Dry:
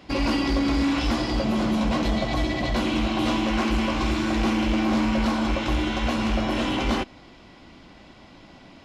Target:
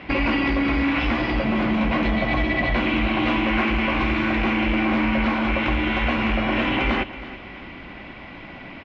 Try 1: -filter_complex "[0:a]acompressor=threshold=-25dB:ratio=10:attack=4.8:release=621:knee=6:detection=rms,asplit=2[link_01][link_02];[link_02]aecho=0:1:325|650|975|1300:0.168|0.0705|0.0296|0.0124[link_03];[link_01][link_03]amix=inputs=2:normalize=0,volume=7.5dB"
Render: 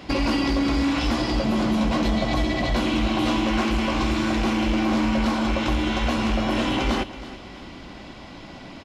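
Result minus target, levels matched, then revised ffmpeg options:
2,000 Hz band −5.0 dB
-filter_complex "[0:a]acompressor=threshold=-25dB:ratio=10:attack=4.8:release=621:knee=6:detection=rms,lowpass=frequency=2300:width_type=q:width=2.6,asplit=2[link_01][link_02];[link_02]aecho=0:1:325|650|975|1300:0.168|0.0705|0.0296|0.0124[link_03];[link_01][link_03]amix=inputs=2:normalize=0,volume=7.5dB"

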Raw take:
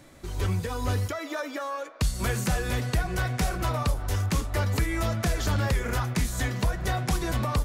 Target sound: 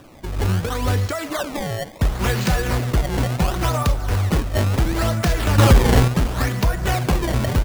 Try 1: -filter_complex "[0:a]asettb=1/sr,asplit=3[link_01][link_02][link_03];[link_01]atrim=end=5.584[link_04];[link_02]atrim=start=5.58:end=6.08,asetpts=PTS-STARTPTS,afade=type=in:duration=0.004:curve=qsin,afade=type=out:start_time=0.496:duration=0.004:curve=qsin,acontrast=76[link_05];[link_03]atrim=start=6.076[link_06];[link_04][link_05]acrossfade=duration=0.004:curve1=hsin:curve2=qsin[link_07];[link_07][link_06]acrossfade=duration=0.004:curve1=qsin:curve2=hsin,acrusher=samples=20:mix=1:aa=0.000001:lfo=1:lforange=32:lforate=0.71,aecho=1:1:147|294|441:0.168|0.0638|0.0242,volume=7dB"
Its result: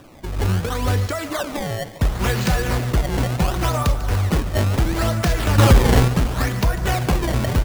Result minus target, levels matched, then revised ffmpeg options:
echo-to-direct +9.5 dB
-filter_complex "[0:a]asettb=1/sr,asplit=3[link_01][link_02][link_03];[link_01]atrim=end=5.584[link_04];[link_02]atrim=start=5.58:end=6.08,asetpts=PTS-STARTPTS,afade=type=in:duration=0.004:curve=qsin,afade=type=out:start_time=0.496:duration=0.004:curve=qsin,acontrast=76[link_05];[link_03]atrim=start=6.076[link_06];[link_04][link_05]acrossfade=duration=0.004:curve1=hsin:curve2=qsin[link_07];[link_07][link_06]acrossfade=duration=0.004:curve1=qsin:curve2=hsin,acrusher=samples=20:mix=1:aa=0.000001:lfo=1:lforange=32:lforate=0.71,aecho=1:1:147|294:0.0562|0.0214,volume=7dB"

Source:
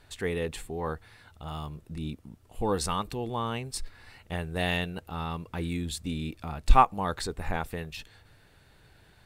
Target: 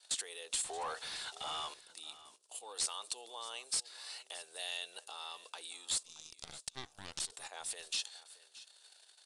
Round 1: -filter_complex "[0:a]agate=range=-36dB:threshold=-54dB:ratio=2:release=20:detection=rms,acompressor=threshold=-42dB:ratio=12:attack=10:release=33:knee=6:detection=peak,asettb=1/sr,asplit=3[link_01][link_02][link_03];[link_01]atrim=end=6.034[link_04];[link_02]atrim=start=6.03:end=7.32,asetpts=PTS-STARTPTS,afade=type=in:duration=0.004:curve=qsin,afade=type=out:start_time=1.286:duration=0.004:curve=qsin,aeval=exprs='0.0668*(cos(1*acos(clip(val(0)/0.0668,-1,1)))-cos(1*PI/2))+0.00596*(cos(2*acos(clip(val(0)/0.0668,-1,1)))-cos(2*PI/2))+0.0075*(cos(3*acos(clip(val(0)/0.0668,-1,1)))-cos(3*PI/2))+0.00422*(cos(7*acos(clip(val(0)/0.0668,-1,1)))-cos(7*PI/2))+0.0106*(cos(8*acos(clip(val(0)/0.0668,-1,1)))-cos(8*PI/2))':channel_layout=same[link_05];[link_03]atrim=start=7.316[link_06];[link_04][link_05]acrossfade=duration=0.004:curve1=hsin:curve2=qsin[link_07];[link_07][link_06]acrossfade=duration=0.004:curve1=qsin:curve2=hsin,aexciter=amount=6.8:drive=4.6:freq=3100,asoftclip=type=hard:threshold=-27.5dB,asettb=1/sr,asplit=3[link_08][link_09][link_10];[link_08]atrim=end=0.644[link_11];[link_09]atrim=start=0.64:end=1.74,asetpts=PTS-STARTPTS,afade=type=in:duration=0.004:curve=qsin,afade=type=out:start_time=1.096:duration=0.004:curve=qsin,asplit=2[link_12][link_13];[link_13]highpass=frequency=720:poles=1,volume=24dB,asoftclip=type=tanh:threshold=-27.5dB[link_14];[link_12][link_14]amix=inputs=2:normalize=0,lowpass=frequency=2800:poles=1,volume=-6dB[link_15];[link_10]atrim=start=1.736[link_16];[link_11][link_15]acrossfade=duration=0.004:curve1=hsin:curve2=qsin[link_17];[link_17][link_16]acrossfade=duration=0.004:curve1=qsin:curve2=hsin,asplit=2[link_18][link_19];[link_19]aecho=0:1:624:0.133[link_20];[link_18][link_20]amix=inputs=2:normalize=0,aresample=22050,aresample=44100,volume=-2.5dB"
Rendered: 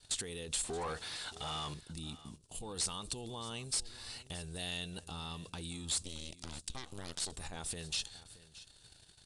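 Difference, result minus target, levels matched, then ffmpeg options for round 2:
500 Hz band +4.0 dB
-filter_complex "[0:a]agate=range=-36dB:threshold=-54dB:ratio=2:release=20:detection=rms,acompressor=threshold=-42dB:ratio=12:attack=10:release=33:knee=6:detection=peak,highpass=frequency=530:width=0.5412,highpass=frequency=530:width=1.3066,asettb=1/sr,asplit=3[link_01][link_02][link_03];[link_01]atrim=end=6.034[link_04];[link_02]atrim=start=6.03:end=7.32,asetpts=PTS-STARTPTS,afade=type=in:duration=0.004:curve=qsin,afade=type=out:start_time=1.286:duration=0.004:curve=qsin,aeval=exprs='0.0668*(cos(1*acos(clip(val(0)/0.0668,-1,1)))-cos(1*PI/2))+0.00596*(cos(2*acos(clip(val(0)/0.0668,-1,1)))-cos(2*PI/2))+0.0075*(cos(3*acos(clip(val(0)/0.0668,-1,1)))-cos(3*PI/2))+0.00422*(cos(7*acos(clip(val(0)/0.0668,-1,1)))-cos(7*PI/2))+0.0106*(cos(8*acos(clip(val(0)/0.0668,-1,1)))-cos(8*PI/2))':channel_layout=same[link_05];[link_03]atrim=start=7.316[link_06];[link_04][link_05]acrossfade=duration=0.004:curve1=hsin:curve2=qsin[link_07];[link_07][link_06]acrossfade=duration=0.004:curve1=qsin:curve2=hsin,aexciter=amount=6.8:drive=4.6:freq=3100,asoftclip=type=hard:threshold=-27.5dB,asettb=1/sr,asplit=3[link_08][link_09][link_10];[link_08]atrim=end=0.644[link_11];[link_09]atrim=start=0.64:end=1.74,asetpts=PTS-STARTPTS,afade=type=in:duration=0.004:curve=qsin,afade=type=out:start_time=1.096:duration=0.004:curve=qsin,asplit=2[link_12][link_13];[link_13]highpass=frequency=720:poles=1,volume=24dB,asoftclip=type=tanh:threshold=-27.5dB[link_14];[link_12][link_14]amix=inputs=2:normalize=0,lowpass=frequency=2800:poles=1,volume=-6dB[link_15];[link_10]atrim=start=1.736[link_16];[link_11][link_15]acrossfade=duration=0.004:curve1=hsin:curve2=qsin[link_17];[link_17][link_16]acrossfade=duration=0.004:curve1=qsin:curve2=hsin,asplit=2[link_18][link_19];[link_19]aecho=0:1:624:0.133[link_20];[link_18][link_20]amix=inputs=2:normalize=0,aresample=22050,aresample=44100,volume=-2.5dB"

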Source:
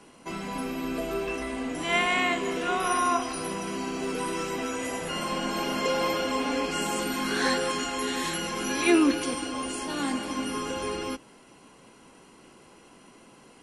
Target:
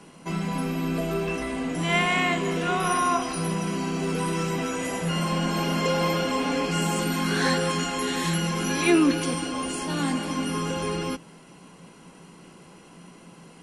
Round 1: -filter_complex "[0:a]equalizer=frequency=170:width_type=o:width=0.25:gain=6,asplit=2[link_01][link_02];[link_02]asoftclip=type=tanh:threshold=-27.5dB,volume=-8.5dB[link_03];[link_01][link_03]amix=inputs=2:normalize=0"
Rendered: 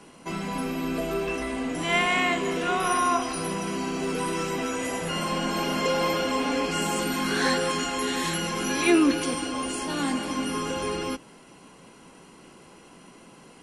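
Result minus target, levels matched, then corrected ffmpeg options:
125 Hz band −7.0 dB
-filter_complex "[0:a]equalizer=frequency=170:width_type=o:width=0.25:gain=16,asplit=2[link_01][link_02];[link_02]asoftclip=type=tanh:threshold=-27.5dB,volume=-8.5dB[link_03];[link_01][link_03]amix=inputs=2:normalize=0"

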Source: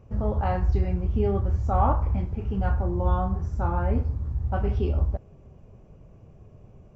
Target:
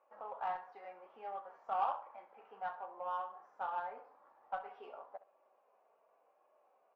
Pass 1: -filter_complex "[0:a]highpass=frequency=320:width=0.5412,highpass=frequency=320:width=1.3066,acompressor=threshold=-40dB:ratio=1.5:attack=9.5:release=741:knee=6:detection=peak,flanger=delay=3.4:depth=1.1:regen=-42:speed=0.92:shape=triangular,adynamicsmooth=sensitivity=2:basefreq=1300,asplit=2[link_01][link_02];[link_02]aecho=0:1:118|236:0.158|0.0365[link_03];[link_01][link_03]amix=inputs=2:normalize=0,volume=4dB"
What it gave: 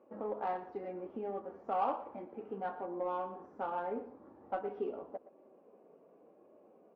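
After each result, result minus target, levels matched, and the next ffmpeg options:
250 Hz band +19.5 dB; echo 53 ms late
-filter_complex "[0:a]highpass=frequency=750:width=0.5412,highpass=frequency=750:width=1.3066,acompressor=threshold=-40dB:ratio=1.5:attack=9.5:release=741:knee=6:detection=peak,flanger=delay=3.4:depth=1.1:regen=-42:speed=0.92:shape=triangular,adynamicsmooth=sensitivity=2:basefreq=1300,asplit=2[link_01][link_02];[link_02]aecho=0:1:118|236:0.158|0.0365[link_03];[link_01][link_03]amix=inputs=2:normalize=0,volume=4dB"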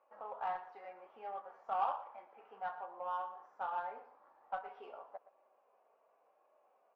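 echo 53 ms late
-filter_complex "[0:a]highpass=frequency=750:width=0.5412,highpass=frequency=750:width=1.3066,acompressor=threshold=-40dB:ratio=1.5:attack=9.5:release=741:knee=6:detection=peak,flanger=delay=3.4:depth=1.1:regen=-42:speed=0.92:shape=triangular,adynamicsmooth=sensitivity=2:basefreq=1300,asplit=2[link_01][link_02];[link_02]aecho=0:1:65|130:0.158|0.0365[link_03];[link_01][link_03]amix=inputs=2:normalize=0,volume=4dB"

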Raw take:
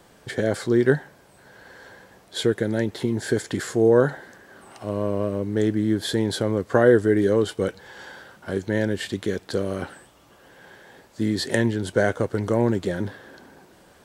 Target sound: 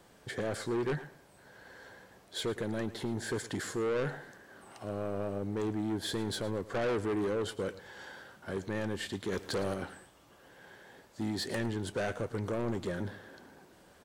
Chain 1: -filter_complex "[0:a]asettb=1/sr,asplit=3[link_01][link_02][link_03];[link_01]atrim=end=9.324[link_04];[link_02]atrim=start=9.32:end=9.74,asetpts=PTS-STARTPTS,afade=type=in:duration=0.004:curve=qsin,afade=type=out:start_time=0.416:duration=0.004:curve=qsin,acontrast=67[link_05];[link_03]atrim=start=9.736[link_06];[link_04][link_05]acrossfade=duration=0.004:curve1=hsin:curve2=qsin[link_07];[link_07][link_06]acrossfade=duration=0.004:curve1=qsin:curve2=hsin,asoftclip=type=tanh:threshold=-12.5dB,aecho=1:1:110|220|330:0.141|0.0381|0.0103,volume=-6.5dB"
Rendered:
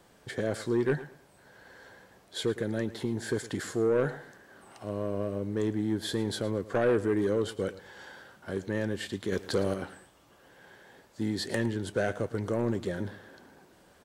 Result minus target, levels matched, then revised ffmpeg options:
soft clipping: distortion −8 dB
-filter_complex "[0:a]asettb=1/sr,asplit=3[link_01][link_02][link_03];[link_01]atrim=end=9.324[link_04];[link_02]atrim=start=9.32:end=9.74,asetpts=PTS-STARTPTS,afade=type=in:duration=0.004:curve=qsin,afade=type=out:start_time=0.416:duration=0.004:curve=qsin,acontrast=67[link_05];[link_03]atrim=start=9.736[link_06];[link_04][link_05]acrossfade=duration=0.004:curve1=hsin:curve2=qsin[link_07];[link_07][link_06]acrossfade=duration=0.004:curve1=qsin:curve2=hsin,asoftclip=type=tanh:threshold=-22dB,aecho=1:1:110|220|330:0.141|0.0381|0.0103,volume=-6.5dB"

